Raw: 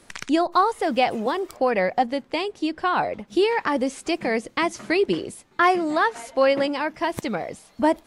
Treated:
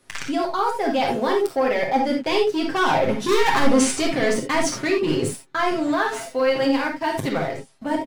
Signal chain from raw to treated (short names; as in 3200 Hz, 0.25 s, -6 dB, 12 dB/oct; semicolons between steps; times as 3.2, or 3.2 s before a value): Doppler pass-by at 3.42, 11 m/s, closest 3 m; sine folder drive 8 dB, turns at -10 dBFS; sample leveller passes 2; reverse; compressor 6:1, threshold -28 dBFS, peak gain reduction 15 dB; reverse; comb 7.5 ms; on a send: reverb, pre-delay 19 ms, DRR 1.5 dB; on the sum: gain +5.5 dB